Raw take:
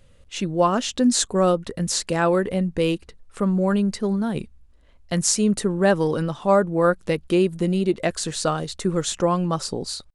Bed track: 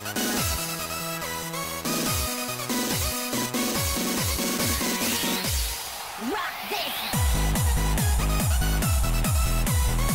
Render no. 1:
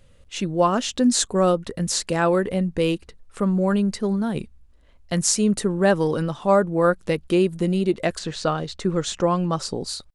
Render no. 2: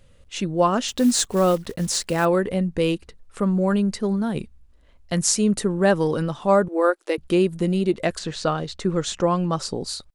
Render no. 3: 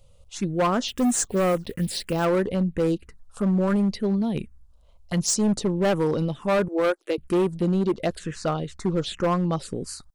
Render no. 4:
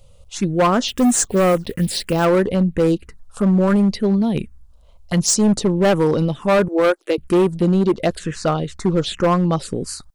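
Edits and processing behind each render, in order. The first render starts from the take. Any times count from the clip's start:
8.18–9.72 LPF 4000 Hz -> 9400 Hz
0.88–2.26 block floating point 5-bit; 6.68–7.18 elliptic high-pass 310 Hz
envelope phaser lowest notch 280 Hz, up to 4700 Hz, full sweep at -15 dBFS; hard clip -17.5 dBFS, distortion -11 dB
gain +6.5 dB

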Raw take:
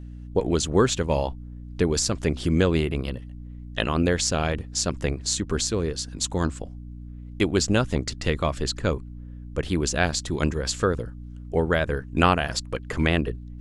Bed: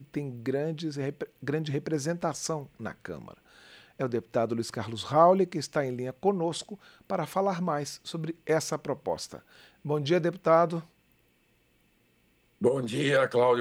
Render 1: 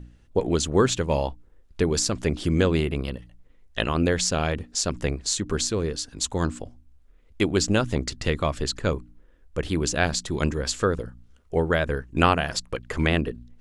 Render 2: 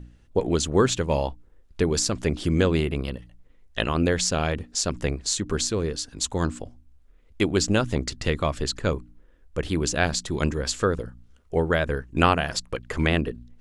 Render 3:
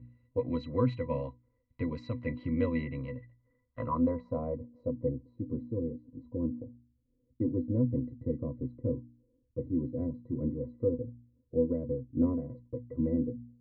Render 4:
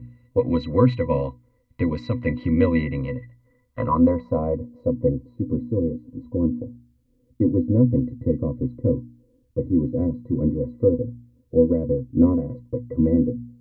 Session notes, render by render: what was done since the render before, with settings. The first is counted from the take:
de-hum 60 Hz, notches 5
nothing audible
octave resonator B, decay 0.1 s; low-pass sweep 2600 Hz -> 370 Hz, 3.02–5.18
gain +11 dB

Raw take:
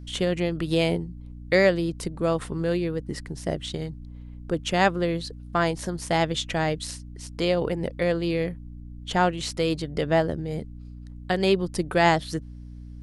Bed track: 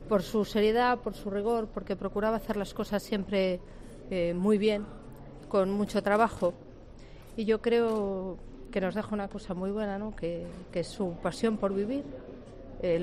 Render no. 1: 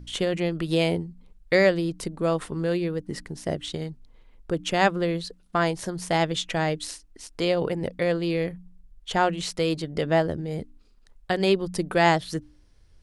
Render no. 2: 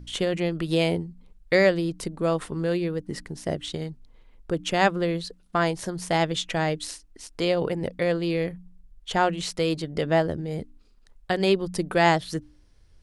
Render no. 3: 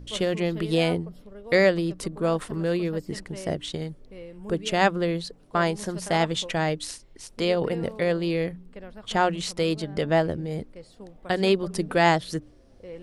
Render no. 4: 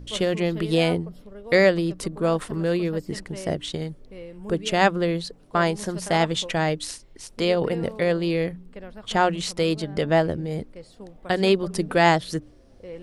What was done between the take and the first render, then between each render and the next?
de-hum 60 Hz, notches 5
nothing audible
add bed track -12.5 dB
gain +2 dB

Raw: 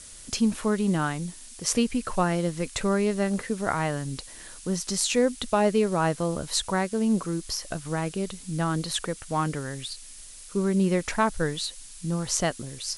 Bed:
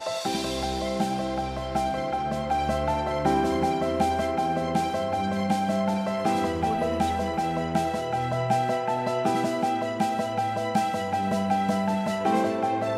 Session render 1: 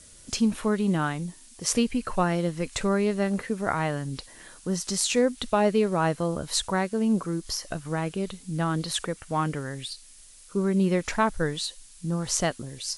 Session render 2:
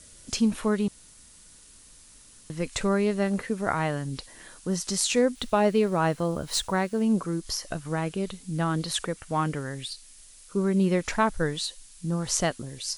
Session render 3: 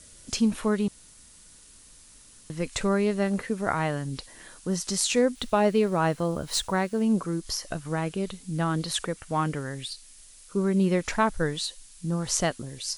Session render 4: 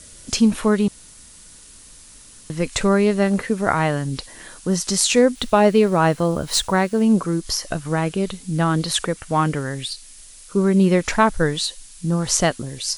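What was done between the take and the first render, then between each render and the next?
noise print and reduce 6 dB
0.88–2.5 room tone; 5.35–7.02 median filter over 3 samples
nothing audible
gain +7.5 dB; limiter -2 dBFS, peak gain reduction 1.5 dB

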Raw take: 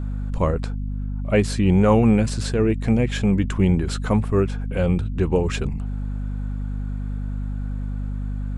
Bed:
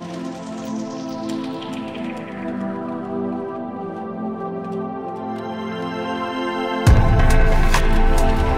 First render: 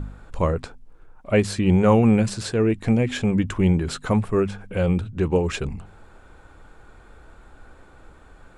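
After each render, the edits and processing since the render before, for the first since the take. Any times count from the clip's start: de-hum 50 Hz, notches 5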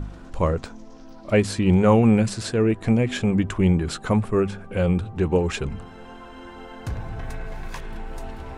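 add bed -18 dB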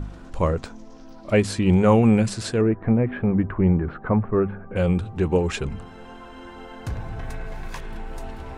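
2.61–4.76 LPF 1800 Hz 24 dB/oct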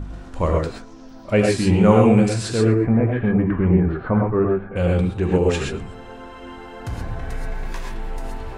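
thinning echo 0.117 s, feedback 29%, level -23 dB; non-linear reverb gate 0.15 s rising, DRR -0.5 dB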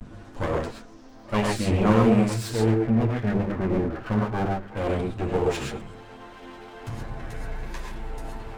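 minimum comb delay 8.8 ms; flange 1.4 Hz, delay 4.7 ms, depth 2.3 ms, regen -67%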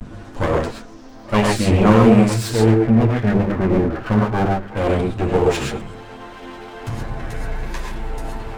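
gain +7.5 dB; limiter -1 dBFS, peak gain reduction 1.5 dB

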